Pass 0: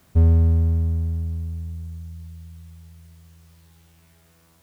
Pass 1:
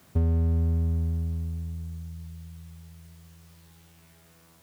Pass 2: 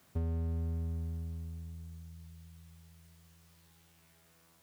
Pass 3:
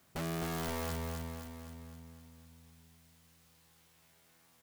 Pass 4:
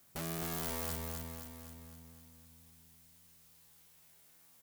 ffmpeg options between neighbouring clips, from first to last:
-af "highpass=91,acompressor=threshold=-22dB:ratio=6,volume=1dB"
-af "lowshelf=f=480:g=-4.5,volume=-6.5dB"
-filter_complex "[0:a]aeval=exprs='(mod(39.8*val(0)+1,2)-1)/39.8':c=same,asplit=2[a][b];[b]aecho=0:1:259|518|777|1036|1295|1554|1813|2072:0.596|0.334|0.187|0.105|0.0586|0.0328|0.0184|0.0103[c];[a][c]amix=inputs=2:normalize=0,volume=-2dB"
-af "crystalizer=i=1.5:c=0,volume=-4dB"

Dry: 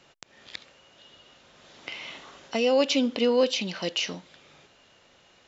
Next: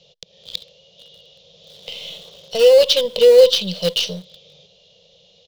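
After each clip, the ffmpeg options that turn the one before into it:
-filter_complex "[0:a]firequalizer=gain_entry='entry(120,0);entry(180,8);entry(260,-27);entry(480,10);entry(820,-11);entry(1500,-24);entry(3300,10);entry(6100,1);entry(8800,-17)':delay=0.05:min_phase=1,asplit=2[a][b];[b]acrusher=bits=4:dc=4:mix=0:aa=0.000001,volume=-9dB[c];[a][c]amix=inputs=2:normalize=0,volume=2.5dB"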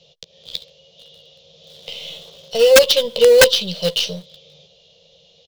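-filter_complex "[0:a]asplit=2[a][b];[b]adelay=13,volume=-8.5dB[c];[a][c]amix=inputs=2:normalize=0,aeval=exprs='(mod(1.41*val(0)+1,2)-1)/1.41':c=same"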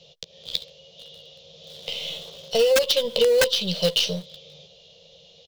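-af "acompressor=threshold=-17dB:ratio=10,volume=1dB"

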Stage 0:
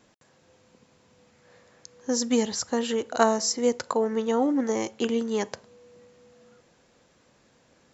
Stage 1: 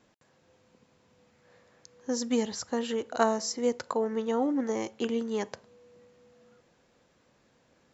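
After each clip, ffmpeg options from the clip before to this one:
-af "highshelf=f=6.9k:g=-7.5,volume=-4dB"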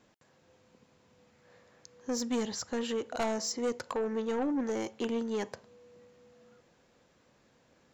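-af "asoftclip=type=tanh:threshold=-26dB"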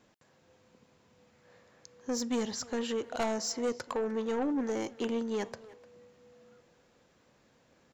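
-filter_complex "[0:a]asplit=2[a][b];[b]adelay=300,highpass=300,lowpass=3.4k,asoftclip=type=hard:threshold=-35.5dB,volume=-14dB[c];[a][c]amix=inputs=2:normalize=0"

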